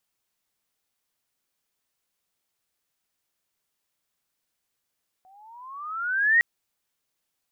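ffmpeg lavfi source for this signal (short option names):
-f lavfi -i "aevalsrc='pow(10,(-14+38*(t/1.16-1))/20)*sin(2*PI*739*1.16/(16.5*log(2)/12)*(exp(16.5*log(2)/12*t/1.16)-1))':d=1.16:s=44100"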